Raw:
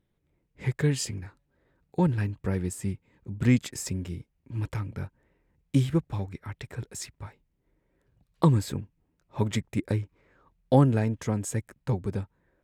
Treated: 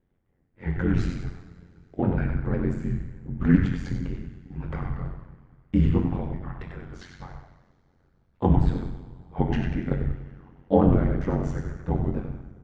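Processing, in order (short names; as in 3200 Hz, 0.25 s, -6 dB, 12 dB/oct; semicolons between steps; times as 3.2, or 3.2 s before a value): repeated pitch sweeps -3.5 st, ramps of 0.506 s; LPF 1900 Hz 12 dB/oct; on a send: frequency-shifting echo 95 ms, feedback 43%, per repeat -65 Hz, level -6.5 dB; on the sum: two-slope reverb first 0.76 s, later 3.2 s, from -20 dB, DRR 2 dB; ring modulator 45 Hz; gain +5 dB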